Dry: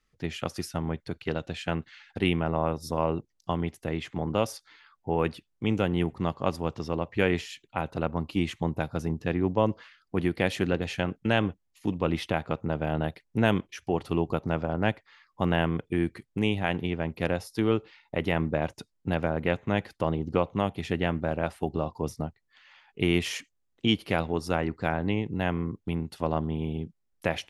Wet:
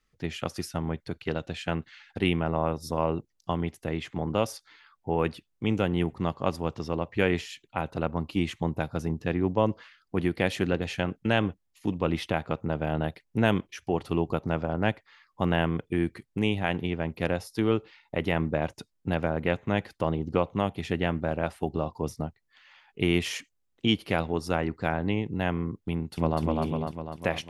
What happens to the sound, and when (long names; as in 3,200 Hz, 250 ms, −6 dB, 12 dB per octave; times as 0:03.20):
0:25.92–0:26.41: delay throw 250 ms, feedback 60%, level −1.5 dB